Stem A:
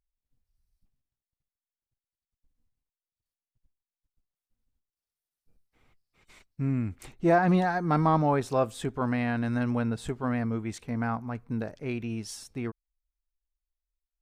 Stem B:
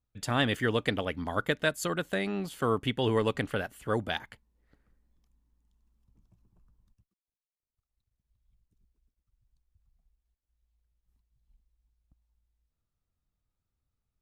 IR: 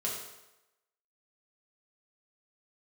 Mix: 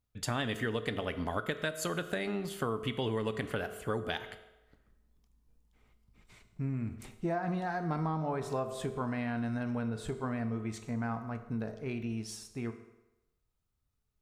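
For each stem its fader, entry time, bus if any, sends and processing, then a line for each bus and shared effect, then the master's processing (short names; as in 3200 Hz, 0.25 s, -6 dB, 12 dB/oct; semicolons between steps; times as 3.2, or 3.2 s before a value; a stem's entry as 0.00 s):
-6.5 dB, 0.00 s, send -8 dB, dry
-1.0 dB, 0.00 s, send -11.5 dB, dry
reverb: on, RT60 0.95 s, pre-delay 4 ms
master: compressor 6:1, threshold -30 dBFS, peak gain reduction 10 dB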